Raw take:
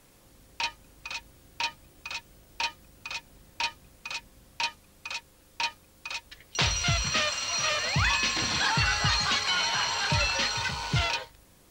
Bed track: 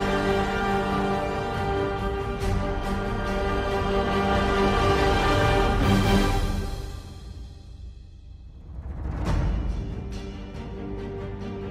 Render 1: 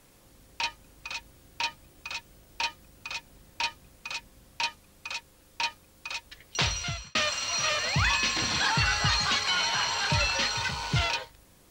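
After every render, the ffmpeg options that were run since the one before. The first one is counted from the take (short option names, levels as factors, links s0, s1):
-filter_complex "[0:a]asplit=2[s0][s1];[s0]atrim=end=7.15,asetpts=PTS-STARTPTS,afade=t=out:st=6.56:d=0.59[s2];[s1]atrim=start=7.15,asetpts=PTS-STARTPTS,afade=t=in:d=0.004:c=hsin[s3];[s2][s3]concat=n=2:v=0:a=1"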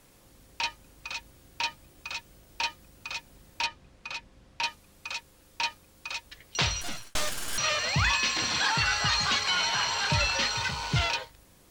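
-filter_complex "[0:a]asettb=1/sr,asplit=3[s0][s1][s2];[s0]atrim=end=3.664[s3];[s1]atrim=start=3.66:end=4.64,asetpts=PTS-STARTPTS,afade=t=in:d=0.004:c=qsin,afade=t=out:st=0.976:d=0.004:c=qsin,adynamicsmooth=sensitivity=1.5:basefreq=5600[s4];[s2]atrim=start=4.636[s5];[s3][s4]acrossfade=d=0.004:c1=hsin:c2=qsin[s6];[s6][s5]acrossfade=d=0.004:c1=qsin:c2=hsin,asettb=1/sr,asplit=3[s7][s8][s9];[s7]atrim=end=6.814[s10];[s8]atrim=start=6.81:end=7.58,asetpts=PTS-STARTPTS,afade=t=in:d=0.004:c=qsin,afade=t=out:st=0.766:d=0.004:c=qsin,aeval=exprs='abs(val(0))':c=same[s11];[s9]atrim=start=7.576[s12];[s10][s11]acrossfade=d=0.004:c1=hsin:c2=qsin[s13];[s13][s12]acrossfade=d=0.004:c1=qsin:c2=hsin,asettb=1/sr,asplit=3[s14][s15][s16];[s14]atrim=end=8.124[s17];[s15]atrim=start=8.12:end=9.18,asetpts=PTS-STARTPTS,afade=t=in:d=0.004:c=qsin,afade=t=out:st=1.056:d=0.004:c=qsin,lowshelf=f=230:g=-6.5[s18];[s16]atrim=start=9.176[s19];[s17][s18]acrossfade=d=0.004:c1=hsin:c2=qsin[s20];[s20][s19]acrossfade=d=0.004:c1=qsin:c2=hsin"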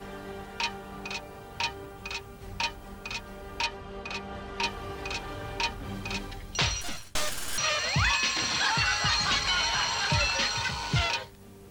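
-filter_complex "[1:a]volume=0.141[s0];[0:a][s0]amix=inputs=2:normalize=0"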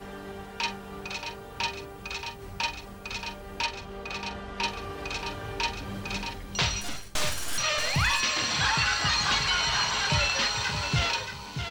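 -filter_complex "[0:a]asplit=2[s0][s1];[s1]adelay=45,volume=0.251[s2];[s0][s2]amix=inputs=2:normalize=0,asplit=2[s3][s4];[s4]aecho=0:1:628:0.422[s5];[s3][s5]amix=inputs=2:normalize=0"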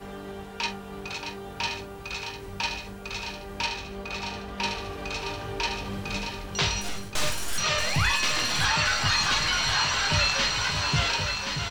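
-filter_complex "[0:a]asplit=2[s0][s1];[s1]adelay=20,volume=0.376[s2];[s0][s2]amix=inputs=2:normalize=0,aecho=1:1:1074|2148|3222|4296|5370:0.473|0.203|0.0875|0.0376|0.0162"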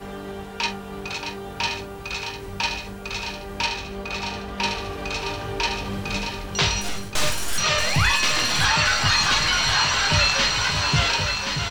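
-af "volume=1.68"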